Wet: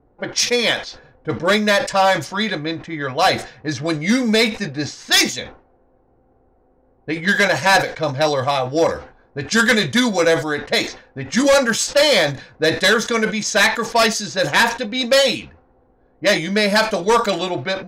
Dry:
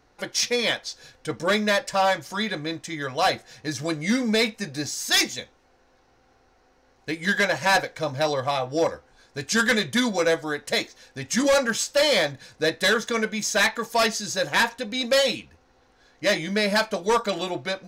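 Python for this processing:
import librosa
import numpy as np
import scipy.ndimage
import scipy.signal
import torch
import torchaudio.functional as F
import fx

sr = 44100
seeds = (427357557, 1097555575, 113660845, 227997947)

y = fx.env_lowpass(x, sr, base_hz=570.0, full_db=-21.0)
y = fx.sustainer(y, sr, db_per_s=130.0)
y = y * librosa.db_to_amplitude(6.0)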